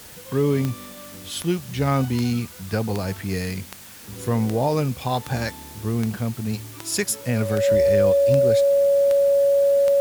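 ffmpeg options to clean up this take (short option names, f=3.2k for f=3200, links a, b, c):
-af "adeclick=t=4,bandreject=f=560:w=30,afwtdn=0.0071"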